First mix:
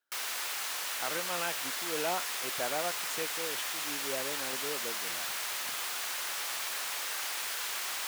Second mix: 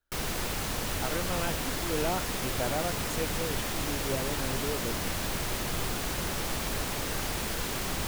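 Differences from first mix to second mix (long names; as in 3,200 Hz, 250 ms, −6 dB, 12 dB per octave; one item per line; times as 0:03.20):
speech: remove meter weighting curve A
background: remove high-pass filter 1,100 Hz 12 dB per octave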